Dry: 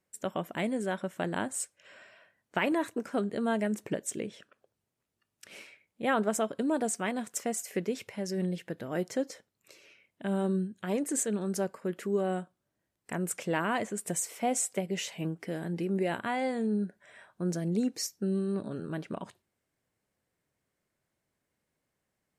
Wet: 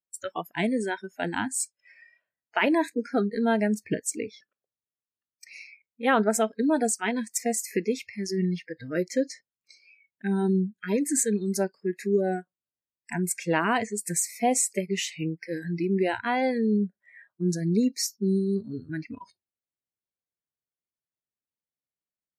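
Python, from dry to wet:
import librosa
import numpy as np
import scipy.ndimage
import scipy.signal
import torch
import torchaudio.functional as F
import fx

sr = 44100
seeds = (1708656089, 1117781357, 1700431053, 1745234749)

y = fx.noise_reduce_blind(x, sr, reduce_db=28)
y = y * librosa.db_to_amplitude(6.0)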